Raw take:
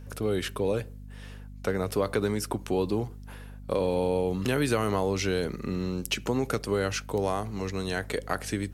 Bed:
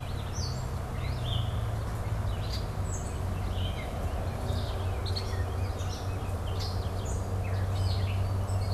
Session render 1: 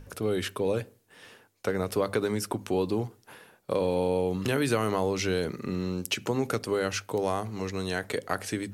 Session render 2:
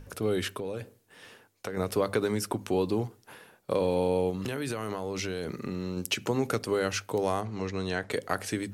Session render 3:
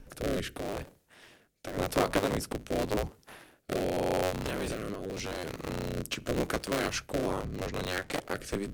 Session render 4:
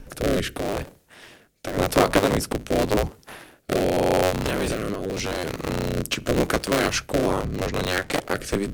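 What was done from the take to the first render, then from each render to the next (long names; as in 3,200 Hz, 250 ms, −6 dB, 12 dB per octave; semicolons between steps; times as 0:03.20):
mains-hum notches 50/100/150/200/250 Hz
0:00.47–0:01.77: downward compressor 10 to 1, threshold −30 dBFS; 0:04.30–0:05.97: downward compressor 12 to 1, threshold −28 dBFS; 0:07.41–0:08.11: high-frequency loss of the air 71 metres
sub-harmonics by changed cycles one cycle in 3, inverted; rotating-speaker cabinet horn 0.85 Hz
level +9 dB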